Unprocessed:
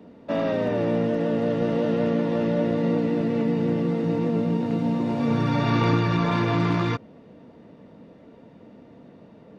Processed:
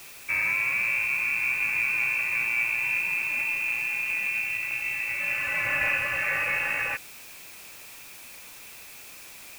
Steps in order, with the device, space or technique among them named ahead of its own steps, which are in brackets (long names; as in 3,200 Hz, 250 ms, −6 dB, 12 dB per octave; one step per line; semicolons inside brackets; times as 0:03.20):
scrambled radio voice (band-pass filter 360–3,100 Hz; voice inversion scrambler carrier 2,900 Hz; white noise bed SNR 17 dB)